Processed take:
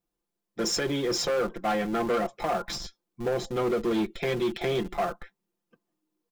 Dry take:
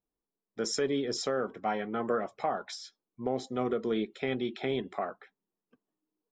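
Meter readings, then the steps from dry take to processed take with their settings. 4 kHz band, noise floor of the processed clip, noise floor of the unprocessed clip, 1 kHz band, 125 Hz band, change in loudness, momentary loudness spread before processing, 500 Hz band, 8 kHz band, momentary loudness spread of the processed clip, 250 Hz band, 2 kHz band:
+6.0 dB, −85 dBFS, below −85 dBFS, +4.0 dB, +6.5 dB, +4.5 dB, 9 LU, +4.0 dB, +6.5 dB, 8 LU, +4.0 dB, +5.5 dB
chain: in parallel at −11.5 dB: comparator with hysteresis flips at −38 dBFS
on the sum: comb filter 5.8 ms, depth 76%
gain into a clipping stage and back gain 25.5 dB
level +3.5 dB

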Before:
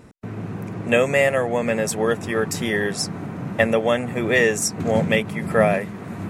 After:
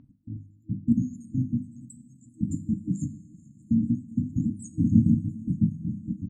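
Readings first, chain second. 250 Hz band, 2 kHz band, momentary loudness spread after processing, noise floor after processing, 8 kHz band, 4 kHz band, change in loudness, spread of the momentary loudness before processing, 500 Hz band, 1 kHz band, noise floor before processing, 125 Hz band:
0.0 dB, below −40 dB, 19 LU, −56 dBFS, −21.0 dB, below −40 dB, −6.5 dB, 13 LU, below −35 dB, below −40 dB, −34 dBFS, 0.0 dB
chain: time-frequency cells dropped at random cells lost 76%
mains-hum notches 50/100/150/200/250 Hz
brick-wall band-stop 320–6,400 Hz
high-shelf EQ 7,500 Hz −8.5 dB
automatic gain control gain up to 10 dB
high-frequency loss of the air 180 metres
on a send: repeating echo 439 ms, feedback 42%, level −23 dB
on the sum: coupled-rooms reverb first 0.48 s, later 4.2 s, from −16 dB, DRR 10.5 dB
level −3 dB

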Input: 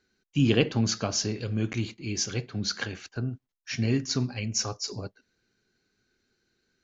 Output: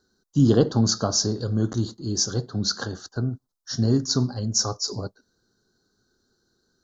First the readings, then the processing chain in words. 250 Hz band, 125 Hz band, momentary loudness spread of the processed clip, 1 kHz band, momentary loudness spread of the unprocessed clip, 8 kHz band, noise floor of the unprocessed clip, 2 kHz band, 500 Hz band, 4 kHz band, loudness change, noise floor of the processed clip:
+5.0 dB, +5.0 dB, 12 LU, +5.5 dB, 11 LU, can't be measured, −81 dBFS, −5.0 dB, +5.0 dB, +4.5 dB, +5.0 dB, −76 dBFS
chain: Chebyshev band-stop filter 1,300–4,300 Hz, order 2
level +6 dB

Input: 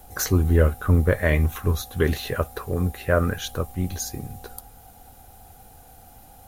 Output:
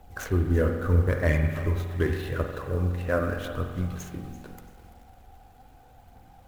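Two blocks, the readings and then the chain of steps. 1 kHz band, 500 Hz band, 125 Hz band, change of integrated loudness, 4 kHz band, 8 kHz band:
−4.5 dB, −3.5 dB, −3.5 dB, −4.0 dB, −10.5 dB, −15.0 dB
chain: running median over 9 samples
phase shifter 0.81 Hz, delay 4.3 ms, feedback 35%
spring reverb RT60 1.5 s, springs 45 ms, chirp 50 ms, DRR 4.5 dB
feedback echo at a low word length 338 ms, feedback 35%, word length 7 bits, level −14 dB
level −5.5 dB

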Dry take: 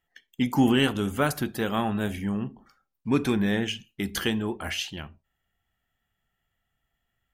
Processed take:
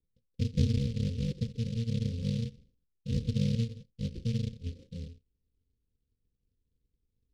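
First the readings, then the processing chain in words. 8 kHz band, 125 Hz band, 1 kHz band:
−13.5 dB, +2.5 dB, below −35 dB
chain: samples in bit-reversed order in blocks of 128 samples
Chebyshev low-pass filter 530 Hz, order 10
low-shelf EQ 420 Hz +6.5 dB
short delay modulated by noise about 3,600 Hz, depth 0.091 ms
level −2 dB

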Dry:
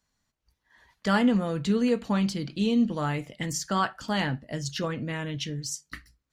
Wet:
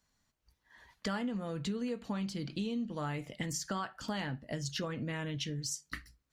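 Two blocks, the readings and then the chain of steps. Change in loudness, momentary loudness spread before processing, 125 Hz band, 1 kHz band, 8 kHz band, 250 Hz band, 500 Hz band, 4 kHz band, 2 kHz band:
−10.0 dB, 10 LU, −8.0 dB, −11.0 dB, −5.0 dB, −11.0 dB, −10.0 dB, −6.5 dB, −9.0 dB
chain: downward compressor 6 to 1, threshold −34 dBFS, peak gain reduction 15 dB

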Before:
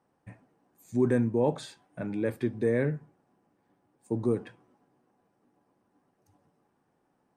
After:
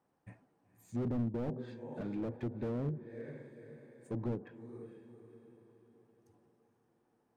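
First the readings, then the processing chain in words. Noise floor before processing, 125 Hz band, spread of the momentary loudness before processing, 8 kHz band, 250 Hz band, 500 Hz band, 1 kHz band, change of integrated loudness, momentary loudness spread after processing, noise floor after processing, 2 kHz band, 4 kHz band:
−74 dBFS, −6.0 dB, 14 LU, can't be measured, −8.0 dB, −12.5 dB, −10.0 dB, −10.5 dB, 21 LU, −77 dBFS, −15.5 dB, below −10 dB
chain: feedback delay with all-pass diffusion 496 ms, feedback 46%, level −14.5 dB
treble cut that deepens with the level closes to 460 Hz, closed at −23 dBFS
slew-rate limiting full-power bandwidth 13 Hz
level −5.5 dB

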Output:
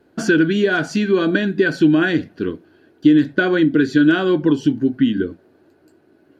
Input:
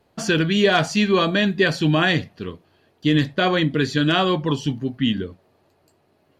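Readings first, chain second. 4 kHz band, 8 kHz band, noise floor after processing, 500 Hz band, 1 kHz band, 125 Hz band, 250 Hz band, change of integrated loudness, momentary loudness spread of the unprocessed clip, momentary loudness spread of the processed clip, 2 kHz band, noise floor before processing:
−6.5 dB, can't be measured, −56 dBFS, +2.5 dB, −4.0 dB, −2.5 dB, +6.0 dB, +3.0 dB, 9 LU, 9 LU, +2.0 dB, −63 dBFS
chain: downward compressor 4 to 1, threshold −22 dBFS, peak gain reduction 9 dB
hollow resonant body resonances 310/1,500 Hz, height 16 dB, ringing for 25 ms
level −1 dB

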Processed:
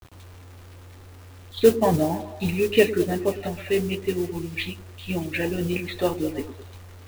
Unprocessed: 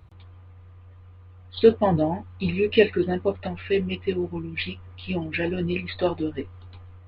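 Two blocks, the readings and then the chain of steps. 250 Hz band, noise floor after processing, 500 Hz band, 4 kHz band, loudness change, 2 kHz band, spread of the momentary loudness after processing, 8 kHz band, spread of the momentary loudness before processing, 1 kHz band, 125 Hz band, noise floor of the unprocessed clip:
+0.5 dB, −45 dBFS, +0.5 dB, +0.5 dB, +0.5 dB, 0.0 dB, 14 LU, can't be measured, 13 LU, +0.5 dB, 0.0 dB, −48 dBFS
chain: bit-depth reduction 8 bits, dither none
noise that follows the level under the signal 19 dB
echo through a band-pass that steps 105 ms, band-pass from 290 Hz, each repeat 0.7 octaves, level −9.5 dB

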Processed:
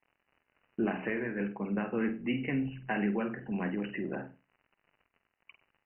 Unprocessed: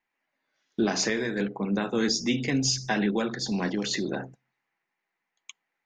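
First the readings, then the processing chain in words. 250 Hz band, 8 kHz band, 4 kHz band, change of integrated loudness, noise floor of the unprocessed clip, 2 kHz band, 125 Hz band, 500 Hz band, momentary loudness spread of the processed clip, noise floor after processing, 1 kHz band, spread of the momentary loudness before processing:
−5.0 dB, below −40 dB, −21.0 dB, −6.5 dB, −84 dBFS, −5.5 dB, −5.5 dB, −6.0 dB, 6 LU, −83 dBFS, −5.5 dB, 5 LU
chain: surface crackle 86 per second −41 dBFS
linear-phase brick-wall low-pass 3,000 Hz
flutter between parallel walls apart 8.4 metres, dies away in 0.28 s
level −6 dB

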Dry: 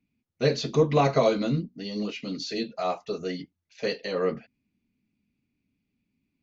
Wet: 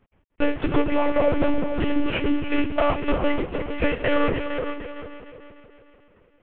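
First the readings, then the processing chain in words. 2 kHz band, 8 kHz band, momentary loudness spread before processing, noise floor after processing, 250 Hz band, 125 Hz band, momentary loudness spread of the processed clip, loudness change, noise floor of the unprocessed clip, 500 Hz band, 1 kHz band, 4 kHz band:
+9.0 dB, can't be measured, 12 LU, −62 dBFS, +7.0 dB, −1.5 dB, 10 LU, +3.0 dB, −82 dBFS, +2.0 dB, +3.0 dB, −0.5 dB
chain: variable-slope delta modulation 16 kbit/s
in parallel at +1 dB: brickwall limiter −21 dBFS, peak gain reduction 10 dB
on the sum: downward compressor 8 to 1, threshold −24 dBFS, peak gain reduction 11.5 dB
on a send: echo machine with several playback heads 151 ms, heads second and third, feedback 43%, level −9 dB
on the sum: one-pitch LPC vocoder at 8 kHz 290 Hz
level +7.5 dB

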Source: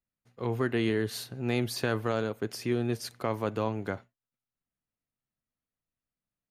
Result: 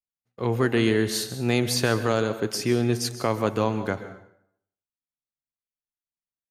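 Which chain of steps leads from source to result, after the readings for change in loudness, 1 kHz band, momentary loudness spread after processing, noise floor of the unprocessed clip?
+7.0 dB, +6.5 dB, 7 LU, below −85 dBFS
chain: noise gate with hold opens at −49 dBFS
dynamic equaliser 6,800 Hz, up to +7 dB, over −55 dBFS, Q 0.99
dense smooth reverb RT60 0.69 s, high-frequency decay 0.75×, pre-delay 115 ms, DRR 11.5 dB
level +6 dB

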